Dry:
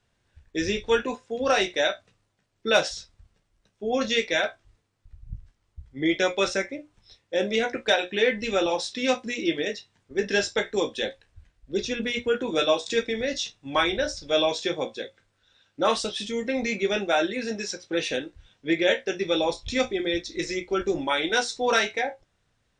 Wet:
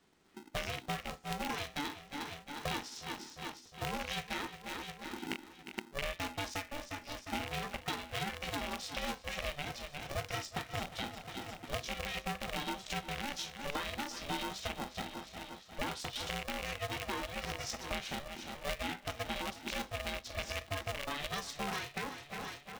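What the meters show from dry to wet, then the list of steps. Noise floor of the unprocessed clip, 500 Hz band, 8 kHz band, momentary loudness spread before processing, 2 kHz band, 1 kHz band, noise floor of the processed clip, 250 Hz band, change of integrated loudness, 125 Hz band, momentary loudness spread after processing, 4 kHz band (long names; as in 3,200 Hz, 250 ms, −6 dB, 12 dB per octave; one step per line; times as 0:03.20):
−72 dBFS, −19.0 dB, −8.5 dB, 9 LU, −12.0 dB, −9.0 dB, −57 dBFS, −14.5 dB, −13.5 dB, −2.0 dB, 6 LU, −11.0 dB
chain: loose part that buzzes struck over −35 dBFS, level −14 dBFS
repeating echo 355 ms, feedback 51%, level −18 dB
downward compressor 8 to 1, threshold −37 dBFS, peak gain reduction 21.5 dB
ring modulator with a square carrier 290 Hz
level +1 dB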